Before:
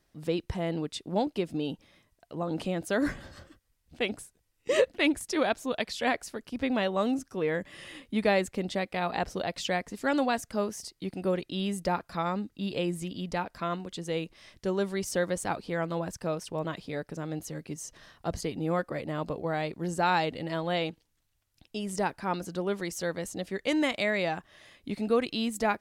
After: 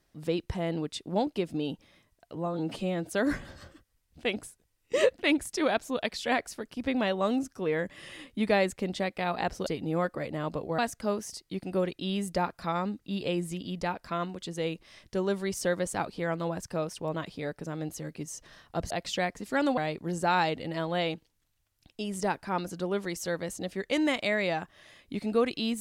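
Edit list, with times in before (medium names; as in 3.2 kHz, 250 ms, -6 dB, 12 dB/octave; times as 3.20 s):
2.35–2.84 s: stretch 1.5×
9.42–10.29 s: swap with 18.41–19.53 s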